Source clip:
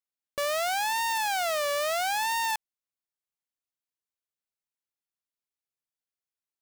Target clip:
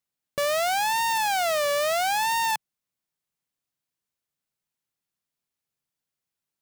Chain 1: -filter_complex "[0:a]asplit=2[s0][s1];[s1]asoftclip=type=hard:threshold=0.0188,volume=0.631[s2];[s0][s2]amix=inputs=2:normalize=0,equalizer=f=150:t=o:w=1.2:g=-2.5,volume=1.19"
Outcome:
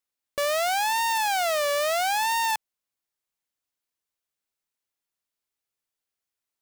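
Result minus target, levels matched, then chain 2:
125 Hz band -8.0 dB
-filter_complex "[0:a]asplit=2[s0][s1];[s1]asoftclip=type=hard:threshold=0.0188,volume=0.631[s2];[s0][s2]amix=inputs=2:normalize=0,equalizer=f=150:t=o:w=1.2:g=9,volume=1.19"

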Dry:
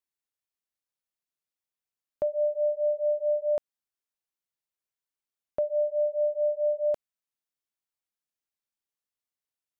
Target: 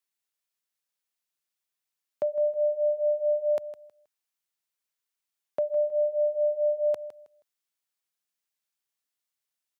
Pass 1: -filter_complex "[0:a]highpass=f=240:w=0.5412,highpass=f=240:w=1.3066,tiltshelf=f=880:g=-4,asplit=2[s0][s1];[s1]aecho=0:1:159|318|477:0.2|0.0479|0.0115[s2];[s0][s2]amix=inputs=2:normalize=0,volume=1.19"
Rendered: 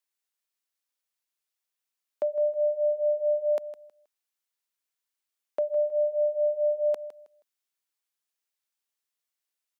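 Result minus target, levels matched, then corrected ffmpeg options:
125 Hz band -14.5 dB
-filter_complex "[0:a]highpass=f=98:w=0.5412,highpass=f=98:w=1.3066,tiltshelf=f=880:g=-4,asplit=2[s0][s1];[s1]aecho=0:1:159|318|477:0.2|0.0479|0.0115[s2];[s0][s2]amix=inputs=2:normalize=0,volume=1.19"

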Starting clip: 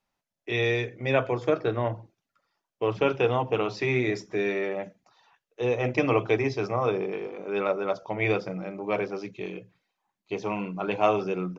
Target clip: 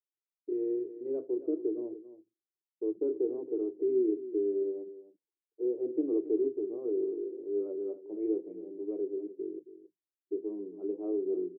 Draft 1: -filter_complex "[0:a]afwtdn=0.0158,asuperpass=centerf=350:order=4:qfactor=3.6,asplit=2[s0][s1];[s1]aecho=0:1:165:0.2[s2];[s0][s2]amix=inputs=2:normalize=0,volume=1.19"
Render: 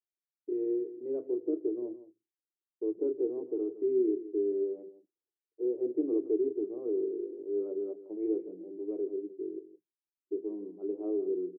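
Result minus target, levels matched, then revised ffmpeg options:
echo 108 ms early
-filter_complex "[0:a]afwtdn=0.0158,asuperpass=centerf=350:order=4:qfactor=3.6,asplit=2[s0][s1];[s1]aecho=0:1:273:0.2[s2];[s0][s2]amix=inputs=2:normalize=0,volume=1.19"

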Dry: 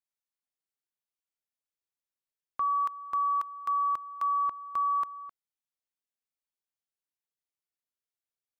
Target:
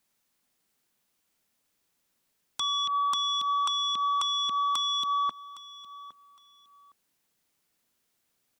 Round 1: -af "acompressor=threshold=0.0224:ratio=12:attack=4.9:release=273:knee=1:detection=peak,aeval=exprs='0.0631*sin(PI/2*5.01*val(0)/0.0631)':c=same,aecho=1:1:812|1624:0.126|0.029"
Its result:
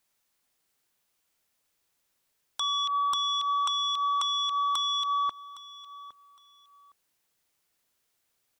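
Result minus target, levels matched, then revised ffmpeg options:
250 Hz band -9.5 dB
-af "acompressor=threshold=0.0224:ratio=12:attack=4.9:release=273:knee=1:detection=peak,equalizer=f=220:t=o:w=1.1:g=7,aeval=exprs='0.0631*sin(PI/2*5.01*val(0)/0.0631)':c=same,aecho=1:1:812|1624:0.126|0.029"

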